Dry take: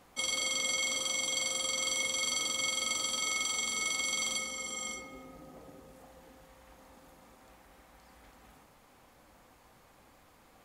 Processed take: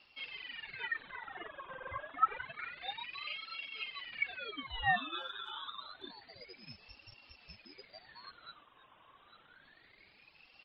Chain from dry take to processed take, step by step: sine folder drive 14 dB, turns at -18.5 dBFS; 5.00–5.66 s: gate with hold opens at -24 dBFS; gain riding within 5 dB 0.5 s; spectral noise reduction 19 dB; frequency inversion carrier 2.7 kHz; distance through air 310 m; speakerphone echo 320 ms, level -14 dB; reverb removal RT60 0.78 s; tilt EQ -4 dB/octave; ring modulator with a swept carrier 1.9 kHz, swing 45%, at 0.28 Hz; trim +1 dB

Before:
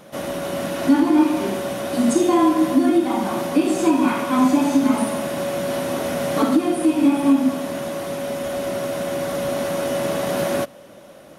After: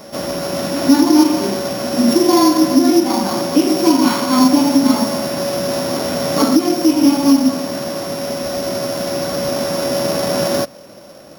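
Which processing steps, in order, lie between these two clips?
sorted samples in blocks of 8 samples; pre-echo 156 ms -16.5 dB; trim +4.5 dB

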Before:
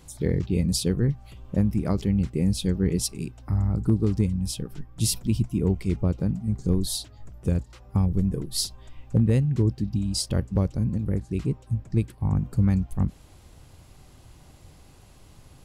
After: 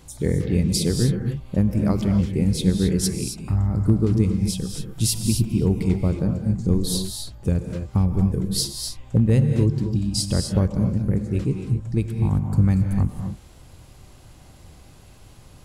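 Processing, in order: gated-style reverb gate 290 ms rising, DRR 4.5 dB; trim +2.5 dB

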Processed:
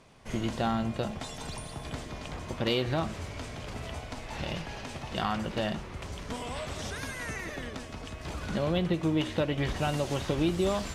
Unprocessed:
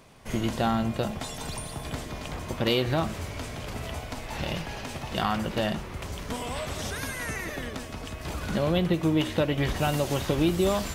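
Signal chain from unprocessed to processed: low-pass 8.8 kHz 12 dB/octave; trim -3.5 dB

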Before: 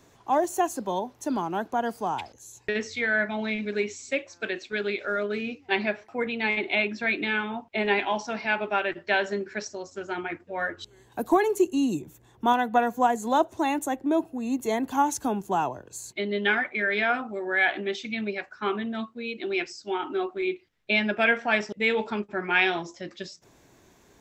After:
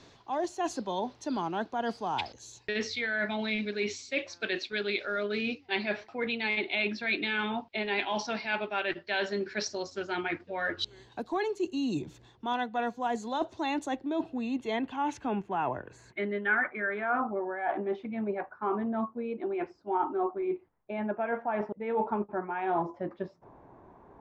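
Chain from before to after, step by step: reverse; compression 6:1, threshold -31 dBFS, peak gain reduction 15 dB; reverse; low-pass sweep 4.4 kHz -> 950 Hz, 13.93–17.57 s; trim +2 dB

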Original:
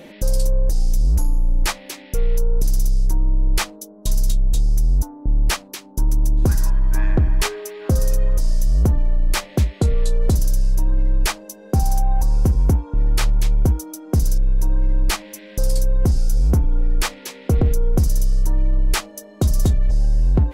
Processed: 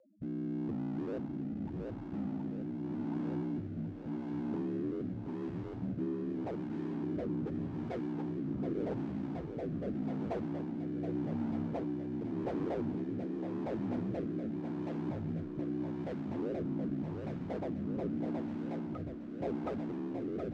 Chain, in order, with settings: backward echo that repeats 245 ms, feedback 82%, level -13 dB; gate with hold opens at -16 dBFS; saturation -19.5 dBFS, distortion -10 dB; loudest bins only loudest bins 2; wavefolder -34.5 dBFS; band-pass 130–7200 Hz; on a send: thinning echo 723 ms, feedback 83%, high-pass 300 Hz, level -4 dB; on the sum: rotary cabinet horn 0.85 Hz; trim +5 dB

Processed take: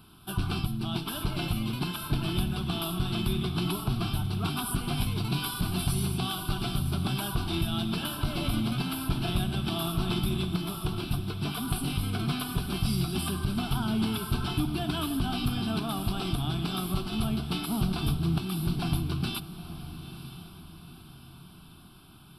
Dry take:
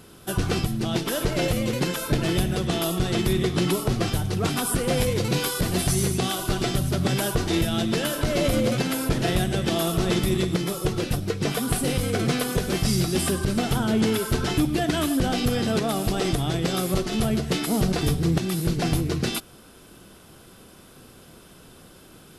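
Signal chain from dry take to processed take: static phaser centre 1.9 kHz, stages 6; echo that smears into a reverb 942 ms, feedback 44%, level -12.5 dB; trim -3.5 dB

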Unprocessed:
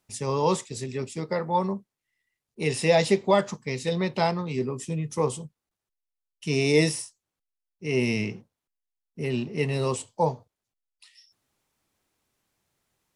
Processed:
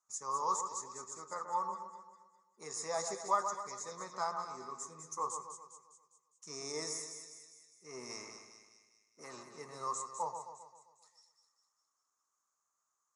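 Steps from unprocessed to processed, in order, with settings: 8.09–9.44 s: spectral peaks clipped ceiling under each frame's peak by 13 dB; two resonant band-passes 2.8 kHz, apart 2.5 oct; two-band feedback delay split 1.9 kHz, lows 132 ms, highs 203 ms, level -7.5 dB; trim +2.5 dB

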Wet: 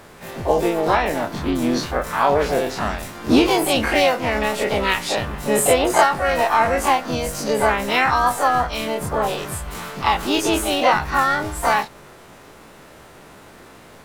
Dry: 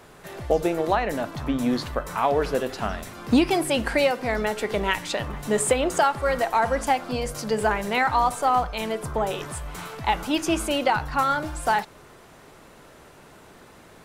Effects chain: every event in the spectrogram widened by 60 ms; harmony voices +5 st -5 dB

